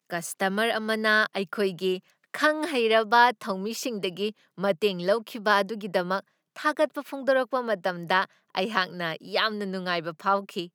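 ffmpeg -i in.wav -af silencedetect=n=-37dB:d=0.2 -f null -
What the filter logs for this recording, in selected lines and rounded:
silence_start: 1.98
silence_end: 2.34 | silence_duration: 0.36
silence_start: 4.31
silence_end: 4.58 | silence_duration: 0.28
silence_start: 6.20
silence_end: 6.56 | silence_duration: 0.36
silence_start: 8.25
silence_end: 8.55 | silence_duration: 0.30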